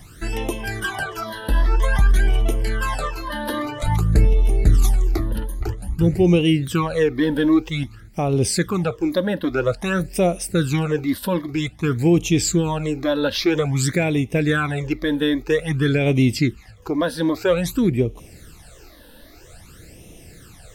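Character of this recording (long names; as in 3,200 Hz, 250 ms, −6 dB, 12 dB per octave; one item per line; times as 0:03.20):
phaser sweep stages 12, 0.51 Hz, lowest notch 120–1,500 Hz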